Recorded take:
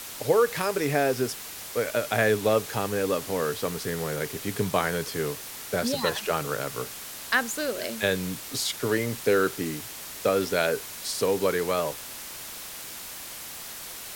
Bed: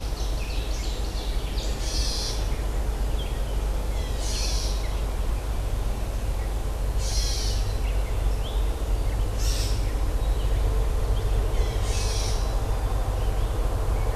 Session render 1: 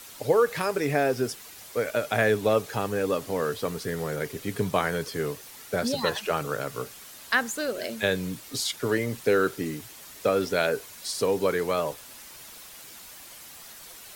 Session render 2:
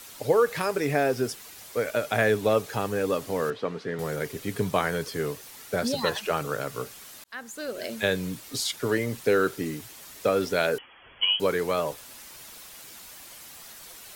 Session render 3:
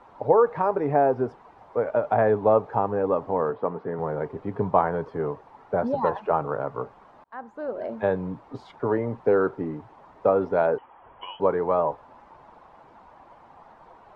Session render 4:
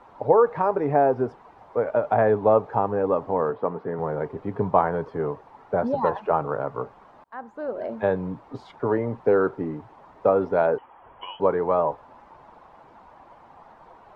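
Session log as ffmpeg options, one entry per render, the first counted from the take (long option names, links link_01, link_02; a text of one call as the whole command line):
ffmpeg -i in.wav -af "afftdn=noise_reduction=8:noise_floor=-40" out.wav
ffmpeg -i in.wav -filter_complex "[0:a]asettb=1/sr,asplit=3[link_01][link_02][link_03];[link_01]atrim=end=3.504[link_04];[link_02]atrim=start=3.5:end=3.99,asetpts=PTS-STARTPTS,afade=type=in:duration=0.004:curve=qsin,afade=type=out:start_time=0.486:duration=0.004:curve=qsin,highpass=160,lowpass=3000[link_05];[link_03]atrim=start=3.986[link_06];[link_04][link_05]acrossfade=duration=0.004:curve1=hsin:curve2=qsin[link_07];[link_07][link_06]acrossfade=duration=0.004:curve1=qsin:curve2=hsin,asettb=1/sr,asplit=3[link_08][link_09][link_10];[link_08]atrim=end=10.784[link_11];[link_09]atrim=start=10.78:end=11.4,asetpts=PTS-STARTPTS,afade=type=in:duration=0.004:curve=qsin,afade=type=out:start_time=0.616:duration=0.004:curve=qsin,lowpass=frequency=2900:width_type=q:width=0.5098,lowpass=frequency=2900:width_type=q:width=0.6013,lowpass=frequency=2900:width_type=q:width=0.9,lowpass=frequency=2900:width_type=q:width=2.563,afreqshift=-3400[link_12];[link_10]atrim=start=11.396[link_13];[link_11][link_12]acrossfade=duration=0.004:curve1=hsin:curve2=qsin[link_14];[link_14][link_13]acrossfade=duration=0.004:curve1=qsin:curve2=hsin,asplit=2[link_15][link_16];[link_15]atrim=end=7.24,asetpts=PTS-STARTPTS,afade=type=out:start_time=7.236:duration=0.004:curve=hsin[link_17];[link_16]atrim=start=7.24,asetpts=PTS-STARTPTS,afade=type=in:duration=0.71[link_18];[link_17][link_18]concat=n=2:v=0:a=1" out.wav
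ffmpeg -i in.wav -af "lowpass=frequency=910:width_type=q:width=3.4" out.wav
ffmpeg -i in.wav -af "volume=1dB" out.wav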